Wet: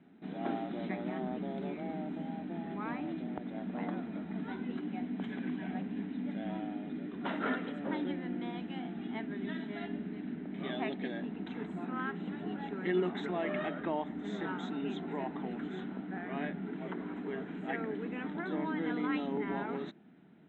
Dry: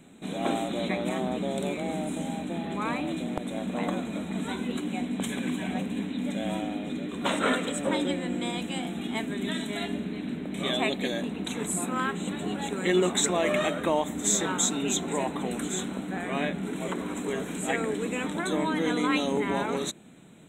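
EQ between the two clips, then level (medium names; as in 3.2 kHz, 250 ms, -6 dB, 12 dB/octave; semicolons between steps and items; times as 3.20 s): cabinet simulation 110–2600 Hz, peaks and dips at 120 Hz -9 dB, 530 Hz -10 dB, 1.1 kHz -7 dB, 2.4 kHz -8 dB; -5.5 dB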